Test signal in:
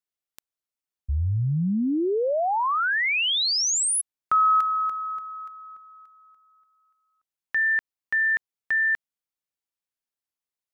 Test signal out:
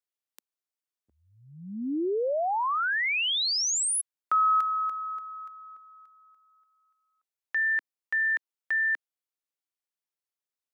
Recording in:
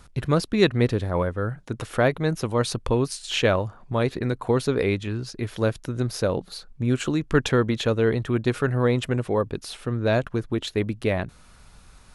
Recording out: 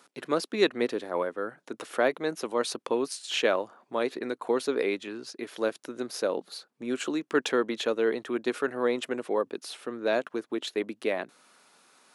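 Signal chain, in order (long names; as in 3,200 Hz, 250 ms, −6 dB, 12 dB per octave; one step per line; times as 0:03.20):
high-pass filter 270 Hz 24 dB per octave
level −3.5 dB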